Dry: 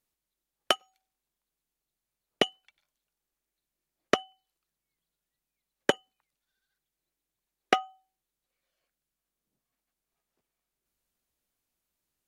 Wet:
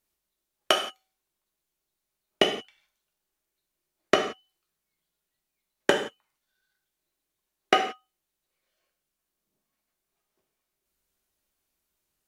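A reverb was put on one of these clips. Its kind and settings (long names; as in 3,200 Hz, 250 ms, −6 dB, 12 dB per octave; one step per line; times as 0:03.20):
reverb whose tail is shaped and stops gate 200 ms falling, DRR 1 dB
level +1.5 dB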